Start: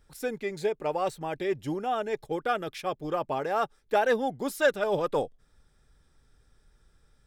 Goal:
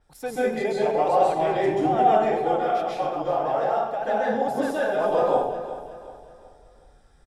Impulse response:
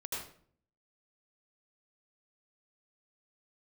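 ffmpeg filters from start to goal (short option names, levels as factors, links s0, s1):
-filter_complex "[0:a]equalizer=f=740:w=2.3:g=11,alimiter=limit=0.141:level=0:latency=1,asettb=1/sr,asplit=3[s0][s1][s2];[s0]atrim=end=2.384[s3];[s1]atrim=start=2.38:end=5,asetpts=PTS-STARTPTS,afade=t=in:d=0.004:c=qsin,afade=t=out:st=2.616:d=0.004:c=qsin,flanger=delay=3.1:depth=7.4:regen=44:speed=1.9:shape=triangular[s4];[s2]atrim=start=4.996[s5];[s3][s4]acrossfade=d=0.004:c1=hsin:c2=qsin[s6];[s6][s5]acrossfade=d=0.004:c1=qsin:c2=hsin,aecho=1:1:369|738|1107|1476:0.224|0.0895|0.0358|0.0143[s7];[1:a]atrim=start_sample=2205,asetrate=25137,aresample=44100[s8];[s7][s8]afir=irnorm=-1:irlink=0,adynamicequalizer=threshold=0.00316:dfrequency=7100:dqfactor=0.7:tfrequency=7100:tqfactor=0.7:attack=5:release=100:ratio=0.375:range=3:mode=cutabove:tftype=highshelf"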